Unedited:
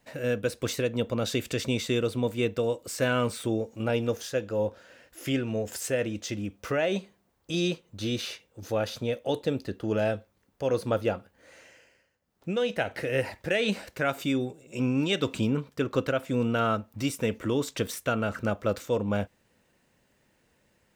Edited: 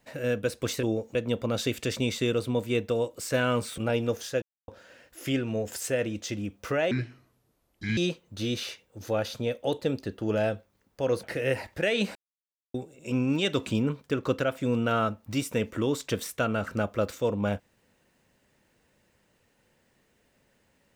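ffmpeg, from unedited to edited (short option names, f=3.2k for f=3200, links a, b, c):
-filter_complex "[0:a]asplit=11[a][b][c][d][e][f][g][h][i][j][k];[a]atrim=end=0.832[l];[b]atrim=start=3.458:end=3.782[m];[c]atrim=start=0.828:end=3.462[n];[d]atrim=start=3.778:end=4.42,asetpts=PTS-STARTPTS,afade=t=out:st=0.638:d=0.004:c=hsin[o];[e]atrim=start=4.42:end=4.68,asetpts=PTS-STARTPTS,volume=0[p];[f]atrim=start=4.68:end=6.914,asetpts=PTS-STARTPTS,afade=t=in:d=0.004:c=hsin[q];[g]atrim=start=6.91:end=7.59,asetpts=PTS-STARTPTS,asetrate=28224,aresample=44100,atrim=end_sample=46856,asetpts=PTS-STARTPTS[r];[h]atrim=start=7.586:end=10.852[s];[i]atrim=start=12.908:end=13.83,asetpts=PTS-STARTPTS,afade=t=out:st=0.918:d=0.004:c=hsin[t];[j]atrim=start=13.83:end=14.42,asetpts=PTS-STARTPTS,volume=0[u];[k]atrim=start=14.42,asetpts=PTS-STARTPTS,afade=t=in:d=0.004:c=hsin[v];[l][m]acrossfade=d=0.004:c1=hsin:c2=hsin[w];[w][n]acrossfade=d=0.004:c1=hsin:c2=hsin[x];[o][p][q]concat=n=3:v=0:a=1[y];[x][y]acrossfade=d=0.004:c1=hsin:c2=hsin[z];[z][r]acrossfade=d=0.004:c1=hsin:c2=hsin[aa];[aa][s]acrossfade=d=0.004:c1=hsin:c2=hsin[ab];[t][u][v]concat=n=3:v=0:a=1[ac];[ab][ac]acrossfade=d=0.004:c1=hsin:c2=hsin"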